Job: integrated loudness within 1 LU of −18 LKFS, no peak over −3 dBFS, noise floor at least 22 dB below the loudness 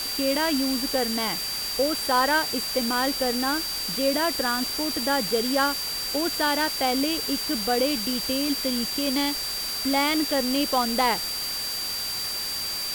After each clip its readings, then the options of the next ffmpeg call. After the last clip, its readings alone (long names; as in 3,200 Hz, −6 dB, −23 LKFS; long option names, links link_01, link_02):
interfering tone 4,700 Hz; level of the tone −29 dBFS; background noise floor −30 dBFS; target noise floor −46 dBFS; integrated loudness −24.0 LKFS; sample peak −9.5 dBFS; target loudness −18.0 LKFS
→ -af "bandreject=frequency=4700:width=30"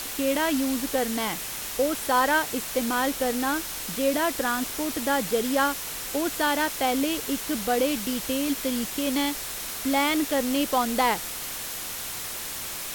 interfering tone none found; background noise floor −34 dBFS; target noise floor −48 dBFS
→ -af "afftdn=noise_reduction=14:noise_floor=-34"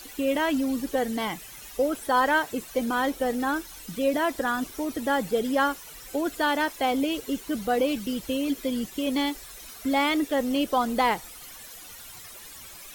background noise floor −44 dBFS; target noise floor −49 dBFS
→ -af "afftdn=noise_reduction=6:noise_floor=-44"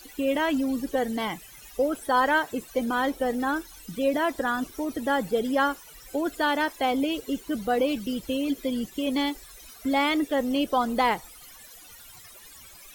background noise floor −48 dBFS; target noise floor −49 dBFS
→ -af "afftdn=noise_reduction=6:noise_floor=-48"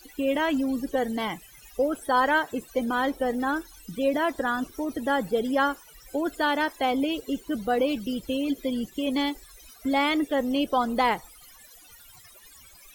background noise floor −52 dBFS; integrated loudness −26.5 LKFS; sample peak −12.0 dBFS; target loudness −18.0 LKFS
→ -af "volume=8.5dB"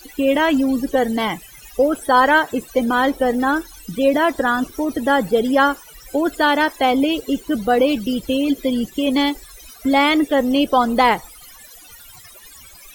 integrated loudness −18.0 LKFS; sample peak −3.5 dBFS; background noise floor −43 dBFS